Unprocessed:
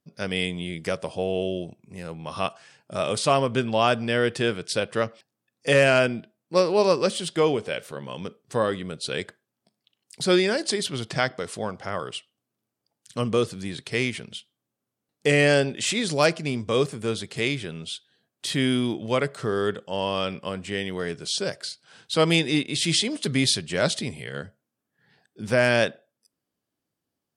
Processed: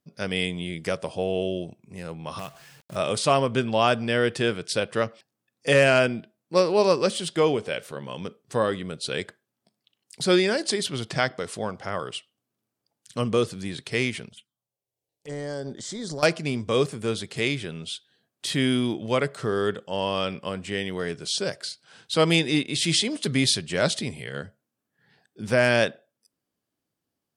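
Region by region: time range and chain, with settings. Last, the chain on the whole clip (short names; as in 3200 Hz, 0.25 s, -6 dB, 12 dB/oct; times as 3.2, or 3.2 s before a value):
2.39–2.96 bell 140 Hz +12.5 dB 0.61 oct + compressor 2:1, threshold -40 dBFS + companded quantiser 4-bit
14.29–16.23 compressor 5:1, threshold -27 dBFS + transient shaper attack -11 dB, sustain -5 dB + envelope phaser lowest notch 220 Hz, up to 2600 Hz, full sweep at -34.5 dBFS
whole clip: dry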